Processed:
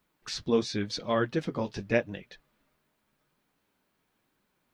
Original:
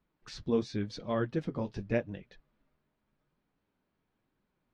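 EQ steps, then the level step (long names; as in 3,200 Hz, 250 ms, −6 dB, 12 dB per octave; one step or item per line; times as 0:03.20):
spectral tilt +2 dB per octave
+6.5 dB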